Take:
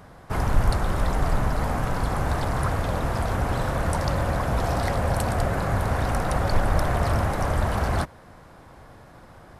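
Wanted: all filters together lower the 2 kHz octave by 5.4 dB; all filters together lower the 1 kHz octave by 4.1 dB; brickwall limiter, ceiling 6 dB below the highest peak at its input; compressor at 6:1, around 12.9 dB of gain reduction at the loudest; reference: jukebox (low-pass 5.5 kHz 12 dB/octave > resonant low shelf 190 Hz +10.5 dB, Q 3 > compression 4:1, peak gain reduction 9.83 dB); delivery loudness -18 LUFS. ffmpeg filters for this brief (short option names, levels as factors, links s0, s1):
-af "equalizer=f=1000:t=o:g=-3.5,equalizer=f=2000:t=o:g=-5.5,acompressor=threshold=0.0398:ratio=6,alimiter=limit=0.0631:level=0:latency=1,lowpass=5500,lowshelf=f=190:t=q:w=3:g=10.5,acompressor=threshold=0.0501:ratio=4,volume=4.47"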